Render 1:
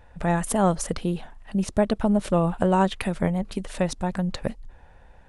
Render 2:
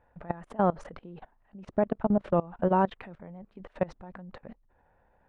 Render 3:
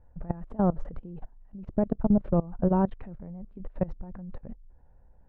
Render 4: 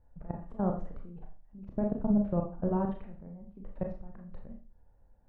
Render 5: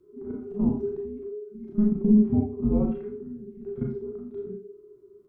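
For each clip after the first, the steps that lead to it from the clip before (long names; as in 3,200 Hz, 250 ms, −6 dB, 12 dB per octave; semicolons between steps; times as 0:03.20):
low-pass filter 1,600 Hz 12 dB per octave; low-shelf EQ 110 Hz −11.5 dB; output level in coarse steps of 22 dB
spectral tilt −4.5 dB per octave; level −6.5 dB
four-comb reverb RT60 0.38 s, combs from 27 ms, DRR 2 dB; level −7 dB
echo ahead of the sound 34 ms −16 dB; harmonic and percussive parts rebalanced percussive −11 dB; frequency shifter −420 Hz; level +7.5 dB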